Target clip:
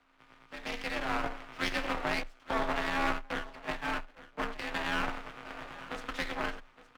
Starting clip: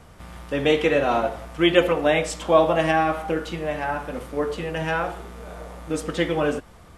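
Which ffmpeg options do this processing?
ffmpeg -i in.wav -filter_complex "[0:a]lowpass=1800,asettb=1/sr,asplit=3[link_01][link_02][link_03];[link_01]atrim=end=2.234[link_04];[link_02]atrim=start=2.23:end=4.59,asetpts=PTS-STARTPTS,afade=type=in:duration=0.004:curve=qsin,afade=type=out:start_time=2.356:duration=0.004:curve=qsin,agate=range=-20dB:threshold=-26dB:ratio=16:detection=peak[link_05];[link_03]atrim=start=4.586[link_06];[link_04][link_05]acrossfade=duration=0.004:curve1=hsin:curve2=qsin[link_07];[link_07][link_06]acrossfade=duration=0.004:curve1=qsin:curve2=hsin,highpass=1300,dynaudnorm=framelen=470:gausssize=5:maxgain=13dB,alimiter=limit=-14dB:level=0:latency=1:release=86,aeval=exprs='max(val(0),0)':channel_layout=same,tremolo=f=250:d=0.919,afreqshift=18,aecho=1:1:866:0.133" out.wav

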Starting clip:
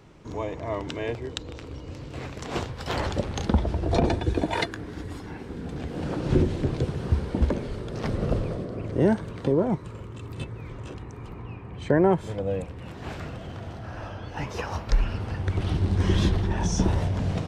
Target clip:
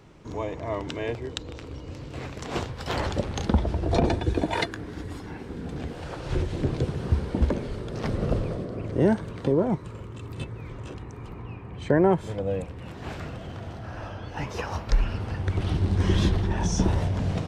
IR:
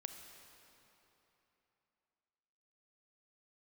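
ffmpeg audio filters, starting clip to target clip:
-filter_complex "[0:a]asettb=1/sr,asplit=3[link_01][link_02][link_03];[link_01]atrim=end=5.934[link_04];[link_02]atrim=start=5.93:end=6.53,asetpts=PTS-STARTPTS,afade=type=in:duration=0.004:curve=qsin,afade=type=out:start_time=0.596:duration=0.004:curve=qsin,equalizer=frequency=230:width_type=o:width=1.5:gain=-14.5[link_05];[link_03]atrim=start=6.526[link_06];[link_04][link_05]acrossfade=duration=0.004:curve1=hsin:curve2=qsin[link_07];[link_07][link_06]acrossfade=duration=0.004:curve1=qsin:curve2=hsin"

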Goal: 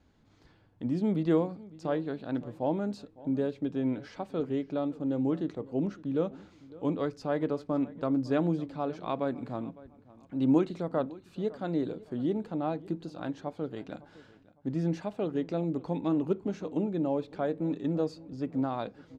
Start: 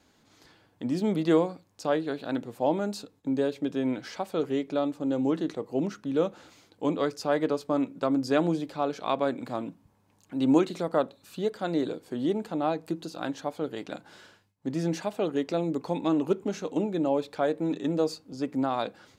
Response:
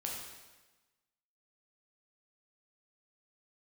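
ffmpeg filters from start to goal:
-filter_complex "[0:a]aemphasis=mode=reproduction:type=bsi,asplit=2[link_01][link_02];[link_02]adelay=557,lowpass=frequency=3900:poles=1,volume=-20dB,asplit=2[link_03][link_04];[link_04]adelay=557,lowpass=frequency=3900:poles=1,volume=0.31[link_05];[link_01][link_03][link_05]amix=inputs=3:normalize=0,volume=-6dB"

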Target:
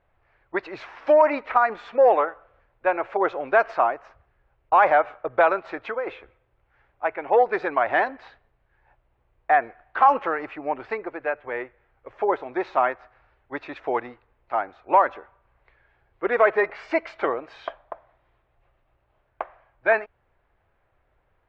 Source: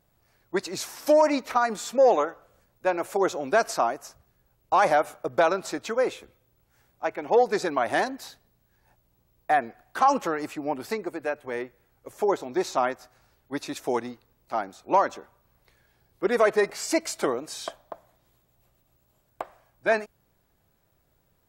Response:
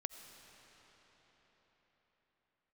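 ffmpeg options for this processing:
-filter_complex "[0:a]lowpass=frequency=2500:width=0.5412,lowpass=frequency=2500:width=1.3066,equalizer=frequency=190:width_type=o:width=1.7:gain=-15,asplit=3[link_01][link_02][link_03];[link_01]afade=type=out:start_time=5.59:duration=0.02[link_04];[link_02]acompressor=threshold=-30dB:ratio=10,afade=type=in:start_time=5.59:duration=0.02,afade=type=out:start_time=6.06:duration=0.02[link_05];[link_03]afade=type=in:start_time=6.06:duration=0.02[link_06];[link_04][link_05][link_06]amix=inputs=3:normalize=0,volume=5.5dB"

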